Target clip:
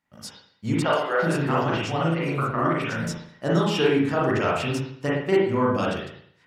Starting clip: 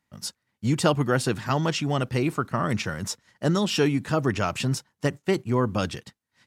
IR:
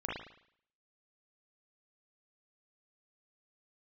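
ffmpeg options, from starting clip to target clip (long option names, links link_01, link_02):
-filter_complex "[0:a]bass=frequency=250:gain=-5,treble=frequency=4000:gain=-4,asettb=1/sr,asplit=3[link_01][link_02][link_03];[link_01]atrim=end=0.824[link_04];[link_02]atrim=start=0.82:end=3.07,asetpts=PTS-STARTPTS,afade=type=in:duration=0.004:curve=qsin,afade=type=out:start_time=2.246:duration=0.004:curve=qsin,acrossover=split=420|4000[link_05][link_06][link_07];[link_07]adelay=110[link_08];[link_05]adelay=390[link_09];[link_09][link_06][link_08]amix=inputs=3:normalize=0,atrim=end_sample=99225[link_10];[link_03]atrim=start=3.066[link_11];[link_04][link_10]acrossfade=duration=0.004:curve1=hsin:curve2=qsin[link_12];[link_12][link_11]acrossfade=duration=0.004:curve1=qsin:curve2=hsin[link_13];[1:a]atrim=start_sample=2205[link_14];[link_13][link_14]afir=irnorm=-1:irlink=0"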